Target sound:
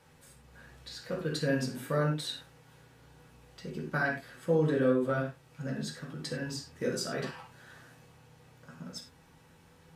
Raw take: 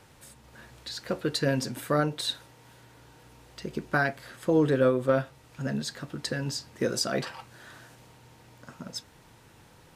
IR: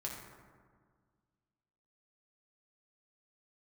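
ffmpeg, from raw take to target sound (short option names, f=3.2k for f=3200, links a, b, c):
-filter_complex "[1:a]atrim=start_sample=2205,atrim=end_sample=6174,asetrate=57330,aresample=44100[a];[0:a][a]afir=irnorm=-1:irlink=0,volume=-2dB"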